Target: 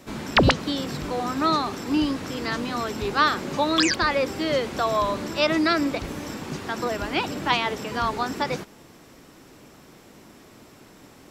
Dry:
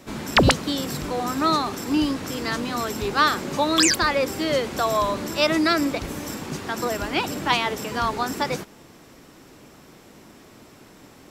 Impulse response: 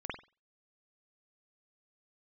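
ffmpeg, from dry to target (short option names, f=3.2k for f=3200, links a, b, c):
-filter_complex "[0:a]acrossover=split=5900[a][b];[b]acompressor=threshold=-48dB:ratio=4:attack=1:release=60[c];[a][c]amix=inputs=2:normalize=0,volume=-1dB"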